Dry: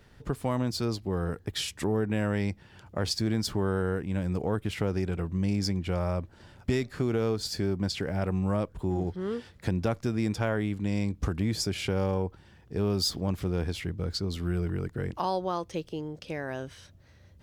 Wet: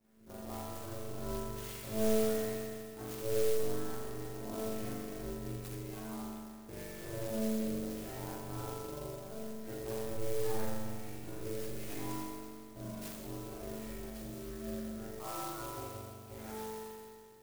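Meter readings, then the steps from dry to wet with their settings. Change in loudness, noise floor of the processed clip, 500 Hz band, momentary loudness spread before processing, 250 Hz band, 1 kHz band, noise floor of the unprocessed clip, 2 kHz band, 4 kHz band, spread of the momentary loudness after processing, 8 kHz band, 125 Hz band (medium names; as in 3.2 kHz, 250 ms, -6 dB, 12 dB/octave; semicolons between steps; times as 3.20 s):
-9.5 dB, -51 dBFS, -6.0 dB, 7 LU, -10.5 dB, -8.5 dB, -56 dBFS, -11.5 dB, -14.5 dB, 11 LU, -5.0 dB, -15.0 dB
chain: chord resonator A2 fifth, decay 0.79 s; ring modulator 220 Hz; spring tank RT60 2.1 s, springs 41 ms, chirp 40 ms, DRR -8 dB; sampling jitter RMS 0.086 ms; trim +3.5 dB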